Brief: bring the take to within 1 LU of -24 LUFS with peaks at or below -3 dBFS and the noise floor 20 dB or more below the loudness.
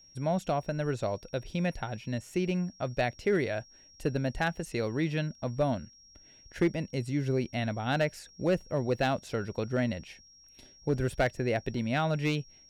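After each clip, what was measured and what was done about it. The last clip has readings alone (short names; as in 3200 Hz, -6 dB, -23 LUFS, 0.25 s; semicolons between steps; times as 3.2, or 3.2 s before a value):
clipped 0.3%; flat tops at -19.0 dBFS; steady tone 5600 Hz; tone level -55 dBFS; loudness -31.5 LUFS; peak -19.0 dBFS; loudness target -24.0 LUFS
-> clip repair -19 dBFS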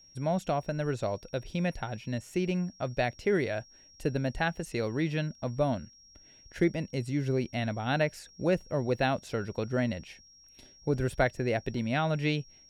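clipped 0.0%; steady tone 5600 Hz; tone level -55 dBFS
-> notch 5600 Hz, Q 30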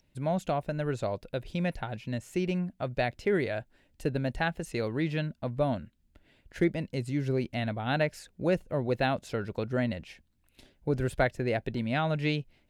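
steady tone none; loudness -31.5 LUFS; peak -11.5 dBFS; loudness target -24.0 LUFS
-> gain +7.5 dB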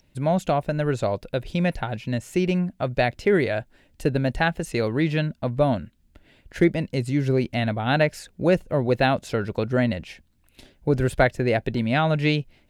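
loudness -24.0 LUFS; peak -4.0 dBFS; noise floor -62 dBFS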